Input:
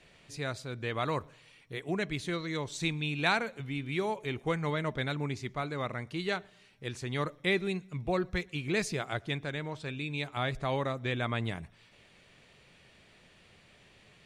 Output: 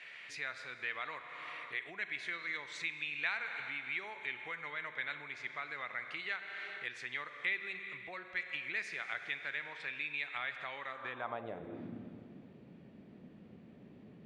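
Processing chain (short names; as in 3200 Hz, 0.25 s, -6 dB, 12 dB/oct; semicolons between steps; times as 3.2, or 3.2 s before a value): Schroeder reverb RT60 2.3 s, combs from 32 ms, DRR 9.5 dB; compressor 4:1, threshold -45 dBFS, peak gain reduction 18.5 dB; band-pass sweep 2000 Hz -> 240 Hz, 10.87–11.94; gain +14.5 dB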